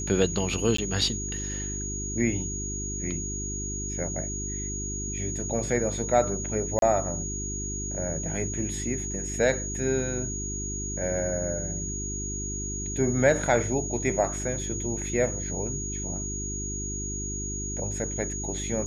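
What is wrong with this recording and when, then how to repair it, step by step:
mains hum 50 Hz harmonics 8 −35 dBFS
whistle 6,700 Hz −33 dBFS
0:00.77–0:00.78: drop-out 14 ms
0:06.79–0:06.82: drop-out 32 ms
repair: hum removal 50 Hz, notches 8
notch filter 6,700 Hz, Q 30
repair the gap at 0:00.77, 14 ms
repair the gap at 0:06.79, 32 ms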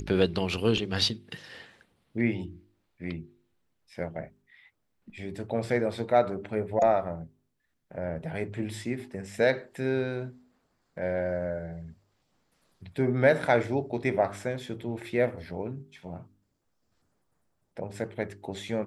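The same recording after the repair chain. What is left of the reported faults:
none of them is left

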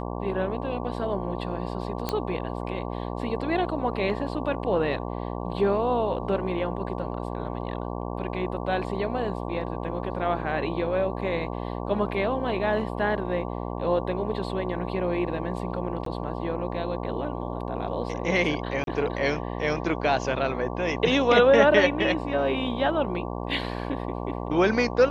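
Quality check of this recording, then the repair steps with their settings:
mains buzz 60 Hz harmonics 19 −32 dBFS
0:02.09: click −12 dBFS
0:16.05–0:16.06: drop-out 13 ms
0:18.84–0:18.87: drop-out 32 ms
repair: click removal
hum removal 60 Hz, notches 19
repair the gap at 0:16.05, 13 ms
repair the gap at 0:18.84, 32 ms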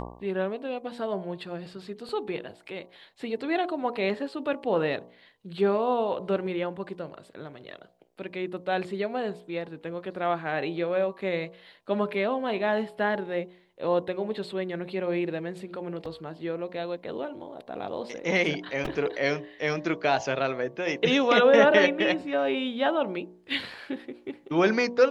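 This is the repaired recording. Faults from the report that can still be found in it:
none of them is left

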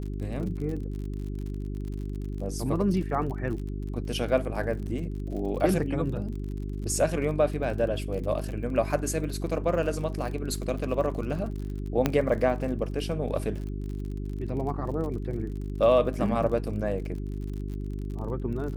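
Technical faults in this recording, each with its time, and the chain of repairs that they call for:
surface crackle 47 per second −36 dBFS
mains hum 50 Hz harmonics 8 −33 dBFS
0:12.06: click −9 dBFS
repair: click removal
hum removal 50 Hz, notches 8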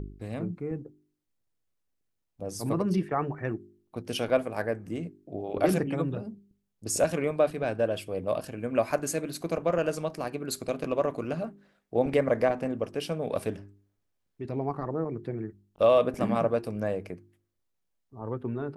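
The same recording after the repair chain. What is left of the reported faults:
none of them is left

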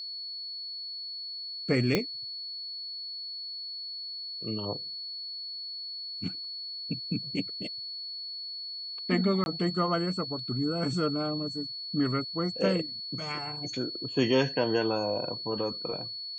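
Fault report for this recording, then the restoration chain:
whistle 4,400 Hz −36 dBFS
0:01.95: click −11 dBFS
0:09.44–0:09.46: drop-out 21 ms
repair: click removal
notch filter 4,400 Hz, Q 30
repair the gap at 0:09.44, 21 ms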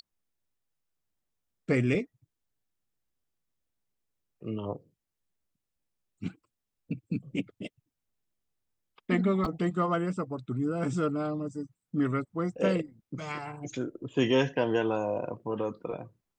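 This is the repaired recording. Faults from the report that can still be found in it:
whistle 4,400 Hz
0:01.95: click

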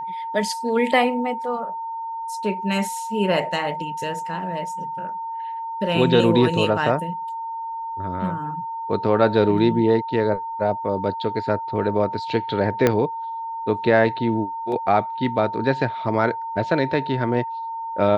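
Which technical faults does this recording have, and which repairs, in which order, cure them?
whistle 910 Hz −27 dBFS
0:12.87: click −4 dBFS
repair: click removal
notch filter 910 Hz, Q 30

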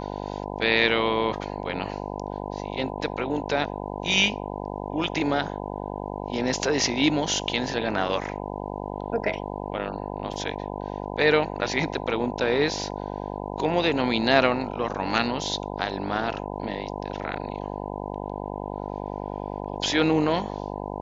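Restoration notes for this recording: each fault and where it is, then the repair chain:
mains buzz 50 Hz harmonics 20 −33 dBFS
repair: hum removal 50 Hz, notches 20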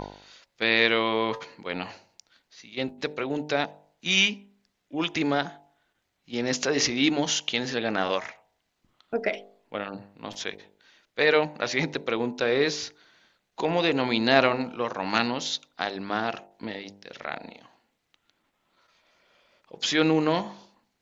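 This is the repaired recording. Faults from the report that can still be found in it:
none of them is left

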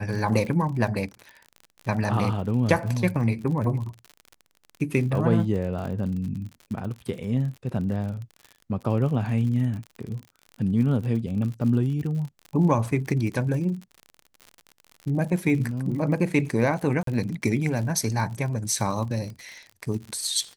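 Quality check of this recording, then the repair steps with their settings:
surface crackle 56 per second −33 dBFS
0:17.03–0:17.07: drop-out 43 ms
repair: click removal
repair the gap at 0:17.03, 43 ms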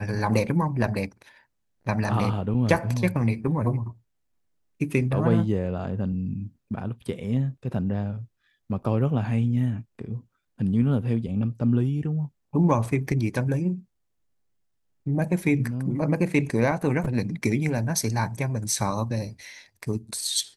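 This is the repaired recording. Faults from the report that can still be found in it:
none of them is left

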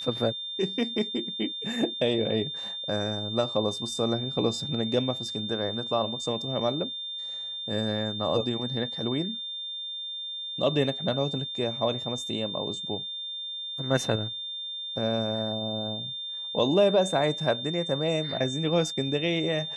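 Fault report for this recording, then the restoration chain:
whistle 3,600 Hz −33 dBFS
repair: notch filter 3,600 Hz, Q 30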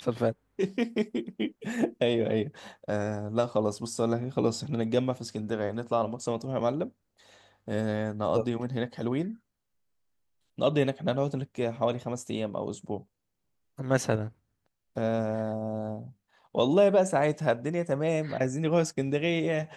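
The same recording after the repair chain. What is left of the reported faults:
none of them is left

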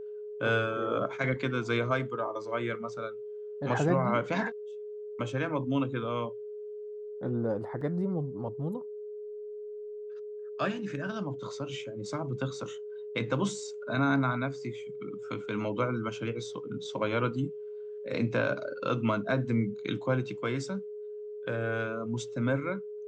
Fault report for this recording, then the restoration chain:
whistle 420 Hz −38 dBFS
0:07.81: drop-out 3.2 ms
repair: notch filter 420 Hz, Q 30
repair the gap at 0:07.81, 3.2 ms

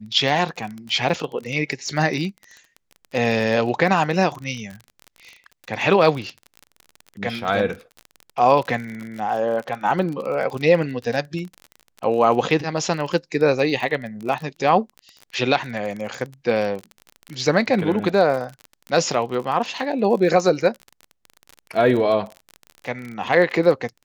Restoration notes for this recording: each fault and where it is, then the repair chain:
surface crackle 33 per second −28 dBFS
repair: click removal

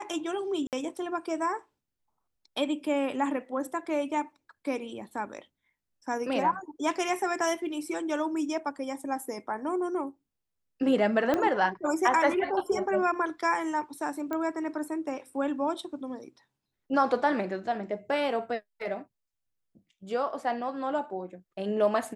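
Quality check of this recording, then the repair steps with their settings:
0:00.67–0:00.73: drop-out 58 ms
0:11.34: click −14 dBFS
0:14.33: click −20 dBFS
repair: click removal
repair the gap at 0:00.67, 58 ms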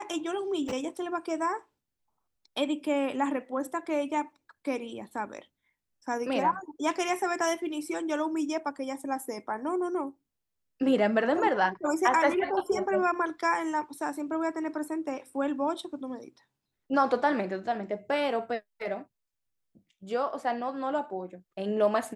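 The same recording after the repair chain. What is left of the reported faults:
0:11.34: click

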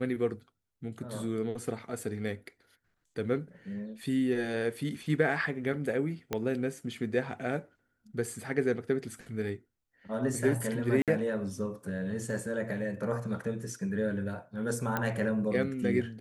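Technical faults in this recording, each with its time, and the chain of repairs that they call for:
0:06.33: click −16 dBFS
0:11.02–0:11.08: drop-out 57 ms
0:14.97: click −16 dBFS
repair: click removal
repair the gap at 0:11.02, 57 ms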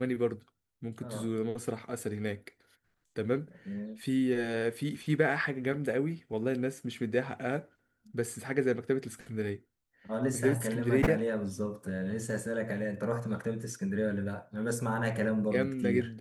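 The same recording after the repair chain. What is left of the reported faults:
0:06.33: click

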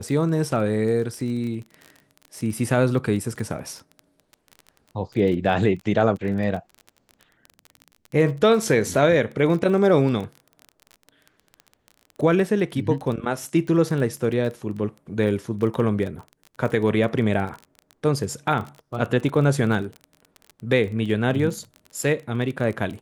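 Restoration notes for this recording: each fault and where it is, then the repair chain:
surface crackle 23 per second −30 dBFS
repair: click removal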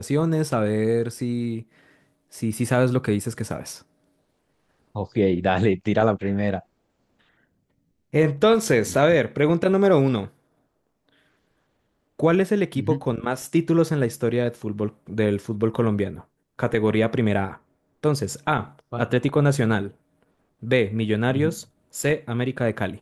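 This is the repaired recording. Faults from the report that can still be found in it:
none of them is left

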